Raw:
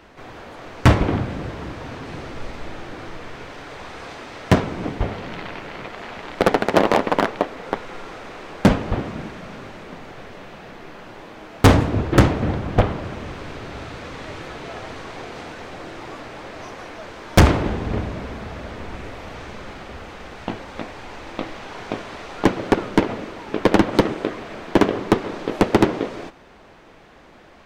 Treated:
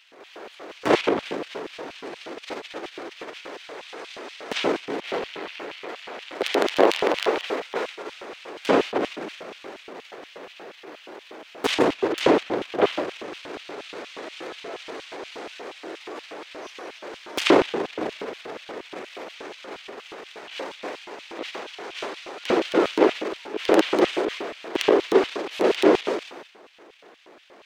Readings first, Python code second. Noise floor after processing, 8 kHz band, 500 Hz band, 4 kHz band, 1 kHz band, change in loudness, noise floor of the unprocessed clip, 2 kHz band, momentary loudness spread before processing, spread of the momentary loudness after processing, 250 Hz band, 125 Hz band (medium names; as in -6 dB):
-49 dBFS, -3.5 dB, +0.5 dB, +2.0 dB, -3.5 dB, -3.0 dB, -47 dBFS, -2.0 dB, 20 LU, 20 LU, -5.0 dB, -23.5 dB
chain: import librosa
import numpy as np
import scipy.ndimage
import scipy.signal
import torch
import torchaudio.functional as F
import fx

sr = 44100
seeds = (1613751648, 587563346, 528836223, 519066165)

y = fx.transient(x, sr, attack_db=-9, sustain_db=10)
y = scipy.signal.sosfilt(scipy.signal.butter(2, 83.0, 'highpass', fs=sr, output='sos'), y)
y = fx.filter_lfo_highpass(y, sr, shape='square', hz=4.2, low_hz=380.0, high_hz=2900.0, q=2.1)
y = F.gain(torch.from_numpy(y), -3.0).numpy()